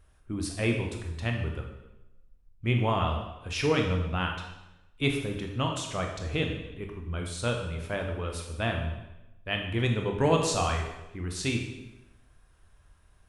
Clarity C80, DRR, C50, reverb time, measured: 7.5 dB, 2.0 dB, 5.0 dB, 0.95 s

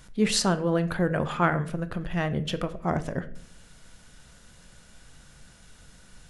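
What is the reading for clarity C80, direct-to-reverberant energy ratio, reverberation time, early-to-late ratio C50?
19.0 dB, 10.5 dB, 0.55 s, 15.5 dB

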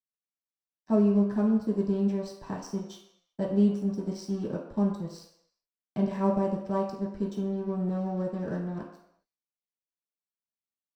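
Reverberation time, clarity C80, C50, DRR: non-exponential decay, 8.0 dB, 5.5 dB, −5.5 dB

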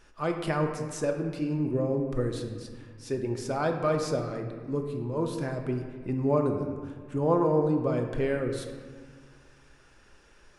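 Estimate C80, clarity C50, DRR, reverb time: 7.0 dB, 5.5 dB, 3.0 dB, 1.7 s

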